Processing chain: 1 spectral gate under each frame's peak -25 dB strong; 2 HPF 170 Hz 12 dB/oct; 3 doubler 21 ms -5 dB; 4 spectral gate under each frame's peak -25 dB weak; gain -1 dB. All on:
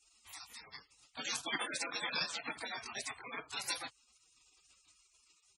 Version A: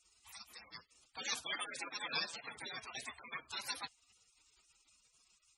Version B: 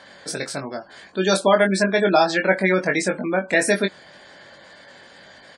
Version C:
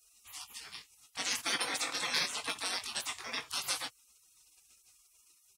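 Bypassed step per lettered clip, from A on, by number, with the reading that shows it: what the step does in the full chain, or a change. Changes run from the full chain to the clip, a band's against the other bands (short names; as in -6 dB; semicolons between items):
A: 3, 250 Hz band -3.5 dB; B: 4, 4 kHz band -15.0 dB; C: 1, 8 kHz band +4.5 dB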